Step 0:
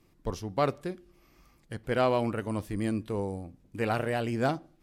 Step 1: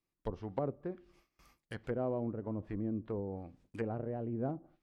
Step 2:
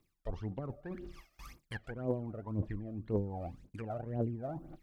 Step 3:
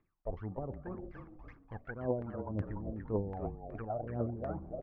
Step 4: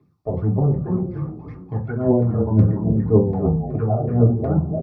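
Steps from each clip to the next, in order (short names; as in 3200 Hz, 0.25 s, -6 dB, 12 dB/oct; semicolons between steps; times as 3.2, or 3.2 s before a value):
treble ducked by the level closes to 410 Hz, closed at -27 dBFS; gate with hold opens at -50 dBFS; low shelf 500 Hz -7 dB
reverse; compressor 5:1, threshold -47 dBFS, peak gain reduction 16 dB; reverse; phaser 1.9 Hz, delay 1.7 ms, feedback 75%; gain +8 dB
on a send: frequency-shifting echo 0.291 s, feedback 39%, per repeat -38 Hz, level -7.5 dB; on the sum: LFO low-pass saw down 2.7 Hz 560–1800 Hz; gain -2 dB
echo 0.68 s -22.5 dB; reverb RT60 0.30 s, pre-delay 3 ms, DRR -5 dB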